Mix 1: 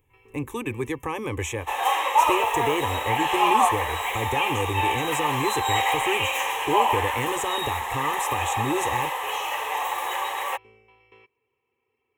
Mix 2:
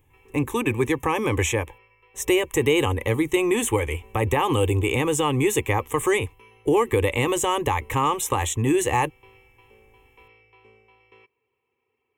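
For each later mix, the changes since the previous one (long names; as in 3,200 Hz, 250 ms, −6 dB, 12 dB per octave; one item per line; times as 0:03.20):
speech +6.5 dB
second sound: muted
reverb: off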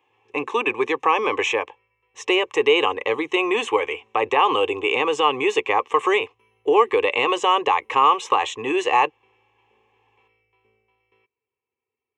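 speech: add loudspeaker in its box 430–5,500 Hz, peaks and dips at 430 Hz +7 dB, 740 Hz +6 dB, 1,100 Hz +9 dB, 2,700 Hz +8 dB, 4,600 Hz +7 dB
background −11.0 dB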